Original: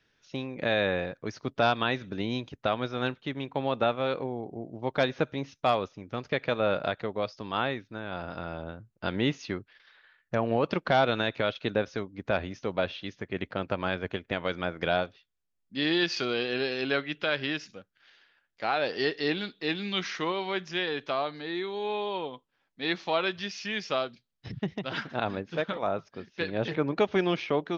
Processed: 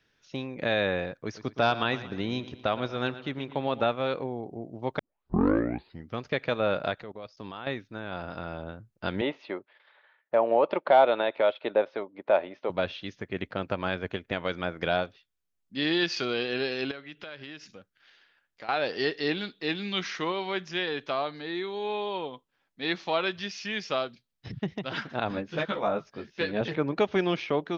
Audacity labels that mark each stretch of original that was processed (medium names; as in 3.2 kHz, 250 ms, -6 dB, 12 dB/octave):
1.200000	3.810000	bucket-brigade echo 116 ms, stages 4096, feedback 49%, level -14.5 dB
4.990000	4.990000	tape start 1.21 s
7.030000	7.670000	level held to a coarse grid steps of 20 dB
9.210000	12.700000	cabinet simulation 360–3400 Hz, peaks and dips at 360 Hz +3 dB, 590 Hz +9 dB, 890 Hz +7 dB, 1.6 kHz -4 dB, 2.8 kHz -4 dB
16.910000	18.690000	compression 3:1, threshold -42 dBFS
25.290000	26.610000	doubling 14 ms -2 dB